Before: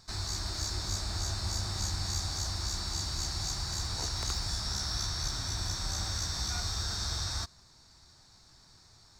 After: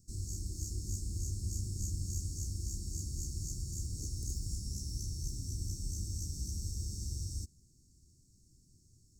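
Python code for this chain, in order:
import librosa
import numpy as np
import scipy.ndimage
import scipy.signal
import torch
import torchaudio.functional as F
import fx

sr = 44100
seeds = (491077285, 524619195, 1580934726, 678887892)

y = scipy.signal.sosfilt(scipy.signal.cheby2(4, 60, [850.0, 2900.0], 'bandstop', fs=sr, output='sos'), x)
y = F.gain(torch.from_numpy(y), -1.5).numpy()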